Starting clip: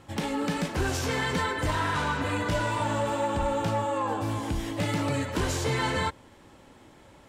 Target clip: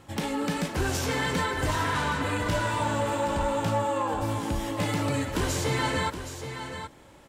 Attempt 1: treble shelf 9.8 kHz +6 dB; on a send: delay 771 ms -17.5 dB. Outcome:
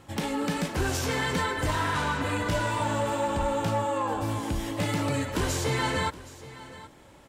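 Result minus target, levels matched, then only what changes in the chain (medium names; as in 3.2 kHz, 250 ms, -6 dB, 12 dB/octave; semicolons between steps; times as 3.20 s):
echo-to-direct -8 dB
change: delay 771 ms -9.5 dB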